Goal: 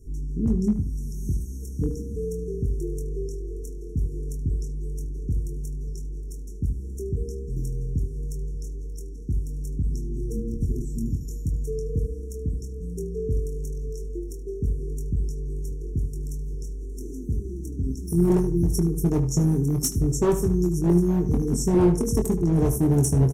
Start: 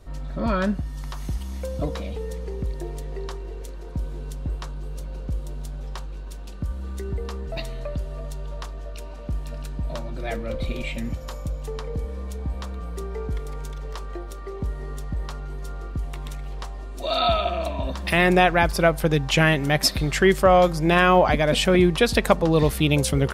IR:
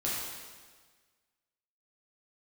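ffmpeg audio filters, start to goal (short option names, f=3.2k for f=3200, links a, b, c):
-filter_complex "[0:a]asplit=2[a][b];[b]aecho=0:1:580:0.0841[c];[a][c]amix=inputs=2:normalize=0,afftfilt=real='re*(1-between(b*sr/4096,470,5400))':imag='im*(1-between(b*sr/4096,470,5400))':win_size=4096:overlap=0.75,asoftclip=type=hard:threshold=-17dB,asplit=2[d][e];[e]adelay=23,volume=-6dB[f];[d][f]amix=inputs=2:normalize=0,asplit=2[g][h];[h]adelay=75,lowpass=f=3.6k:p=1,volume=-11dB,asplit=2[i][j];[j]adelay=75,lowpass=f=3.6k:p=1,volume=0.25,asplit=2[k][l];[l]adelay=75,lowpass=f=3.6k:p=1,volume=0.25[m];[i][k][m]amix=inputs=3:normalize=0[n];[g][n]amix=inputs=2:normalize=0,adynamicequalizer=threshold=0.0112:dfrequency=110:dqfactor=1.4:tfrequency=110:tqfactor=1.4:attack=5:release=100:ratio=0.375:range=2.5:mode=boostabove:tftype=bell"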